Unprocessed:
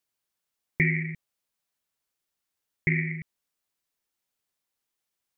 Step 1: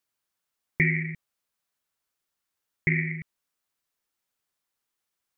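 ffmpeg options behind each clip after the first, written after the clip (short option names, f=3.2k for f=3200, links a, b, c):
-af "equalizer=f=1.3k:w=1.5:g=3.5"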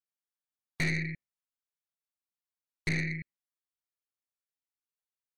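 -af "aeval=exprs='(tanh(20*val(0)+0.55)-tanh(0.55))/20':c=same,afftdn=nr=15:nf=-58"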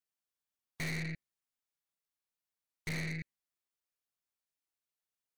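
-af "aeval=exprs='(tanh(70.8*val(0)+0.35)-tanh(0.35))/70.8':c=same,volume=1.5dB"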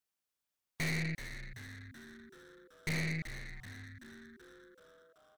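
-filter_complex "[0:a]asplit=8[a][b][c][d][e][f][g][h];[b]adelay=381,afreqshift=-130,volume=-10dB[i];[c]adelay=762,afreqshift=-260,volume=-14.4dB[j];[d]adelay=1143,afreqshift=-390,volume=-18.9dB[k];[e]adelay=1524,afreqshift=-520,volume=-23.3dB[l];[f]adelay=1905,afreqshift=-650,volume=-27.7dB[m];[g]adelay=2286,afreqshift=-780,volume=-32.2dB[n];[h]adelay=2667,afreqshift=-910,volume=-36.6dB[o];[a][i][j][k][l][m][n][o]amix=inputs=8:normalize=0,volume=2.5dB"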